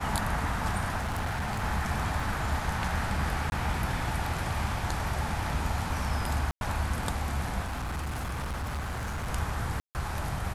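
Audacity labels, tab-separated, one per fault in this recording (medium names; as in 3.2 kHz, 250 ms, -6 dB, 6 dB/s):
0.960000	1.630000	clipped -27.5 dBFS
2.200000	2.200000	dropout 3.7 ms
3.500000	3.520000	dropout 21 ms
6.510000	6.610000	dropout 101 ms
7.650000	9.290000	clipped -30 dBFS
9.800000	9.950000	dropout 149 ms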